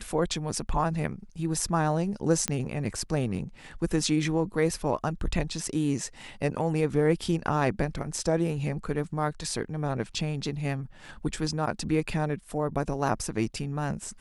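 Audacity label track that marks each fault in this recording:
2.480000	2.480000	pop -10 dBFS

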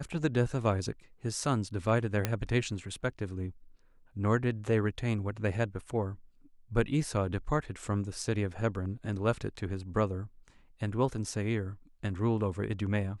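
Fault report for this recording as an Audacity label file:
2.250000	2.250000	pop -13 dBFS

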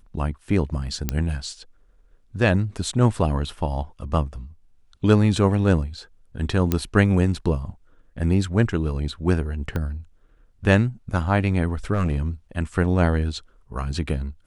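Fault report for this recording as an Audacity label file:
1.090000	1.090000	pop -7 dBFS
6.720000	6.720000	pop -7 dBFS
9.760000	9.760000	pop -15 dBFS
11.940000	12.180000	clipped -17 dBFS

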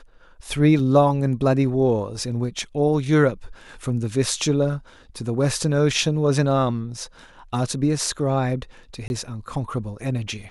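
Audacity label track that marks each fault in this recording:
0.790000	0.790000	dropout 2.6 ms
9.080000	9.100000	dropout 21 ms

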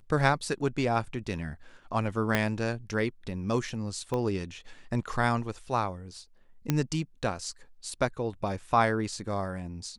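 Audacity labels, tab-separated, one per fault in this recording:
2.350000	2.350000	pop -10 dBFS
4.140000	4.140000	pop -19 dBFS
6.700000	6.700000	pop -11 dBFS

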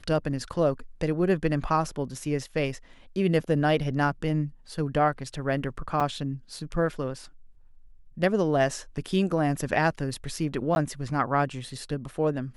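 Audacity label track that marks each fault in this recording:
6.000000	6.010000	dropout 6 ms
10.750000	10.760000	dropout

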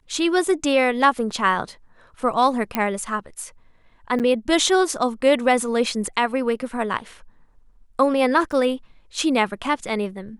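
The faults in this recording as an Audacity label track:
2.750000	2.750000	pop -7 dBFS
4.190000	4.200000	dropout 8.3 ms
8.520000	8.530000	dropout 5.4 ms

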